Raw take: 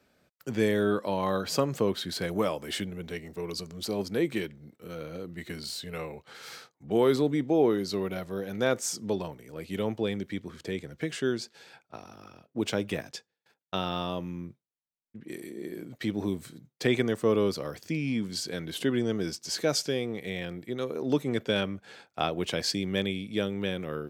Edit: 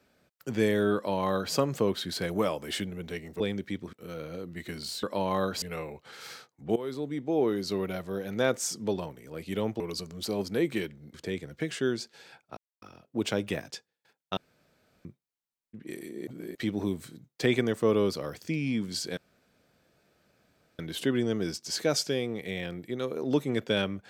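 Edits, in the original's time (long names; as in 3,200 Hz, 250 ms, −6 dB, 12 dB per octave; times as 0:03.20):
0:00.95–0:01.54: duplicate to 0:05.84
0:03.40–0:04.74: swap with 0:10.02–0:10.55
0:06.98–0:07.96: fade in, from −16.5 dB
0:11.98–0:12.23: silence
0:13.78–0:14.46: fill with room tone
0:15.68–0:15.96: reverse
0:18.58: splice in room tone 1.62 s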